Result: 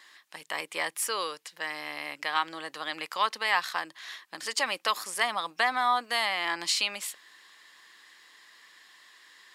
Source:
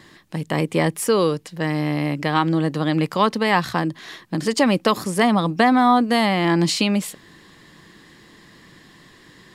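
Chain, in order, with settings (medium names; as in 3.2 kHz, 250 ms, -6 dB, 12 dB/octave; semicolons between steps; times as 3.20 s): high-pass 1.1 kHz 12 dB/octave; trim -3.5 dB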